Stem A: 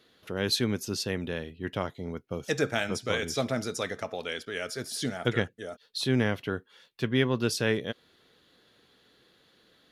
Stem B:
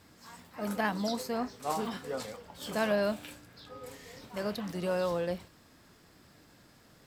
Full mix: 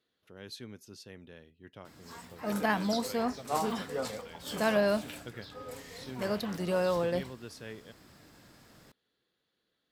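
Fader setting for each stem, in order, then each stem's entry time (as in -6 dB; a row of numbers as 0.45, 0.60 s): -18.0, +2.0 dB; 0.00, 1.85 s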